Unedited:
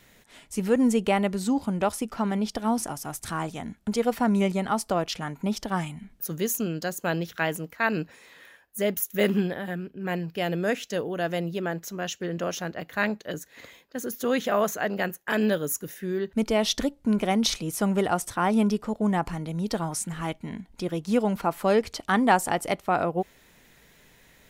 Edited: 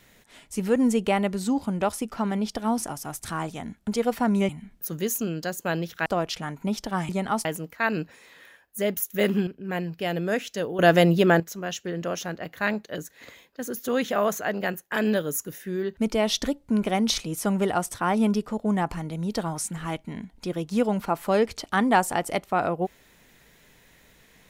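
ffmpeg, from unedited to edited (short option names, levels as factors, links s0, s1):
-filter_complex "[0:a]asplit=8[s0][s1][s2][s3][s4][s5][s6][s7];[s0]atrim=end=4.492[s8];[s1]atrim=start=5.878:end=7.452[s9];[s2]atrim=start=4.848:end=5.882[s10];[s3]atrim=start=4.488:end=4.852[s11];[s4]atrim=start=7.448:end=9.472[s12];[s5]atrim=start=9.828:end=11.152[s13];[s6]atrim=start=11.148:end=11.762,asetpts=PTS-STARTPTS,volume=3.55[s14];[s7]atrim=start=11.758[s15];[s8][s9]acrossfade=d=0.004:c1=hsin:c2=hsin[s16];[s16][s10]acrossfade=d=0.004:c1=hsin:c2=hsin[s17];[s17][s11]acrossfade=d=0.004:c1=hsin:c2=hsin[s18];[s18][s12]acrossfade=d=0.004:c1=hsin:c2=hsin[s19];[s19][s13]acrossfade=d=0.004:c1=hsin:c2=hsin[s20];[s20][s14]acrossfade=d=0.004:c1=hsin:c2=hsin[s21];[s21][s15]acrossfade=d=0.004:c1=hsin:c2=hsin"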